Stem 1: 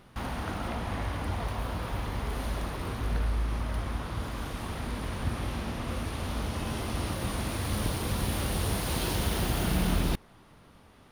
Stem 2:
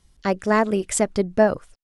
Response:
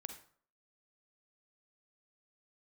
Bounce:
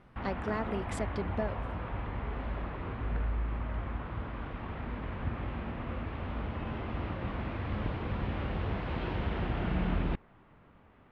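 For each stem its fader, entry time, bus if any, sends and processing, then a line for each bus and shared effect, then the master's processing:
−3.5 dB, 0.00 s, no send, low-pass filter 2,600 Hz 24 dB per octave
−11.5 dB, 0.00 s, no send, downward compressor, threshold −19 dBFS, peak gain reduction 8.5 dB; high shelf with overshoot 5,000 Hz −9.5 dB, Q 1.5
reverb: not used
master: no processing

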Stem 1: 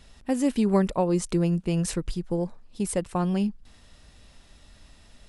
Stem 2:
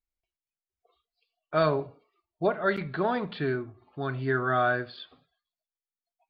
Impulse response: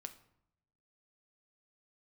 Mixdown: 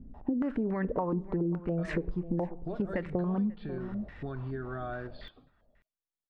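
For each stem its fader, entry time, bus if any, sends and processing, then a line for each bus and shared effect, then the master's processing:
+0.5 dB, 0.00 s, send −3.5 dB, echo send −17 dB, brickwall limiter −19 dBFS, peak gain reduction 10 dB; low-pass on a step sequencer 7.1 Hz 260–1,900 Hz
−3.0 dB, 0.25 s, no send, no echo send, tilt shelving filter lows +6 dB, about 690 Hz; notch filter 2,000 Hz; downward compressor 6 to 1, threshold −32 dBFS, peak gain reduction 14 dB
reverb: on, RT60 0.75 s, pre-delay 6 ms
echo: single-tap delay 540 ms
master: downward compressor 6 to 1, threshold −28 dBFS, peak gain reduction 13.5 dB

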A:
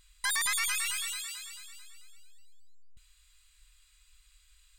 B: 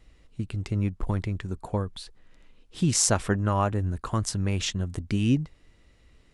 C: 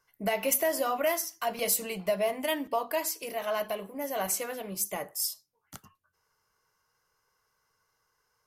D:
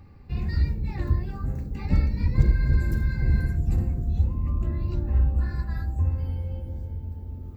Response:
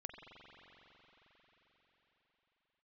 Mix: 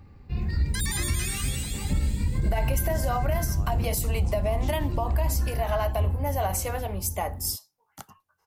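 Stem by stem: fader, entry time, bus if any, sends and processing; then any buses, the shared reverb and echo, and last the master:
0.0 dB, 0.50 s, no send, echo send −8.5 dB, guitar amp tone stack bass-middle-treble 10-0-10
−13.0 dB, 0.00 s, no send, echo send −13 dB, downward compressor 2.5 to 1, threshold −34 dBFS, peak gain reduction 11 dB
+1.5 dB, 2.25 s, no send, no echo send, parametric band 820 Hz +9.5 dB 0.63 octaves; downward compressor, threshold −24 dBFS, peak gain reduction 6.5 dB
−0.5 dB, 0.00 s, no send, no echo send, no processing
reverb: not used
echo: repeating echo 176 ms, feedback 52%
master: brickwall limiter −16.5 dBFS, peak gain reduction 10.5 dB

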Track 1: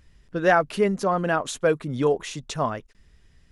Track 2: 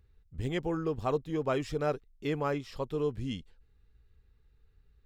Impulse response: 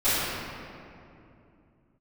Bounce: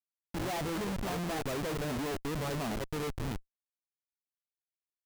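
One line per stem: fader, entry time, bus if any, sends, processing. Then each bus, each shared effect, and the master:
−6.0 dB, 0.00 s, no send, no echo send, adaptive Wiener filter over 25 samples; drawn EQ curve 150 Hz 0 dB, 270 Hz +4 dB, 540 Hz −10 dB, 800 Hz +4 dB, 1,500 Hz −28 dB, 3,400 Hz +7 dB
+2.5 dB, 0.00 s, no send, echo send −22 dB, high-shelf EQ 2,900 Hz +4 dB; automatic ducking −9 dB, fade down 1.25 s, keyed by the first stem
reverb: not used
echo: single-tap delay 199 ms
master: comparator with hysteresis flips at −40.5 dBFS

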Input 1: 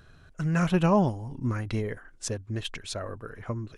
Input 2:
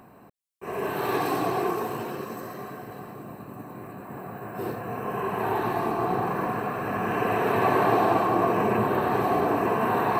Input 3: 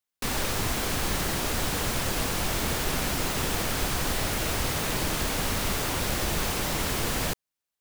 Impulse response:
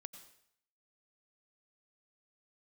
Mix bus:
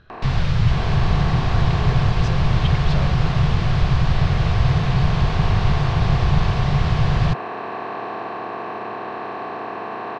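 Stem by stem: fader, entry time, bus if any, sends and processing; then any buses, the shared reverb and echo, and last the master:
−2.5 dB, 0.00 s, no send, compressor whose output falls as the input rises −32 dBFS
−12.5 dB, 0.10 s, send −4 dB, compressor on every frequency bin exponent 0.2; low-shelf EQ 300 Hz −11.5 dB
+0.5 dB, 0.00 s, no send, low shelf with overshoot 200 Hz +12 dB, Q 3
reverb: on, RT60 0.65 s, pre-delay 83 ms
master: low-pass filter 4,500 Hz 24 dB per octave

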